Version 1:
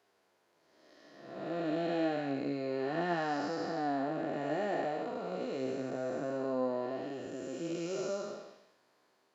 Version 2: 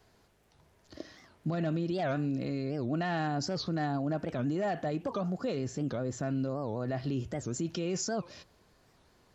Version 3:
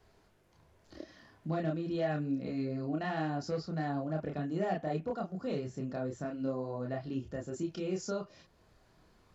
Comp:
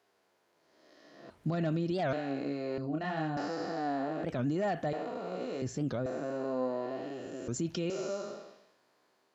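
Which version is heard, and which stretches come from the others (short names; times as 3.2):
1
1.3–2.13 from 2
2.78–3.37 from 3
4.24–4.93 from 2
5.62–6.06 from 2
7.48–7.9 from 2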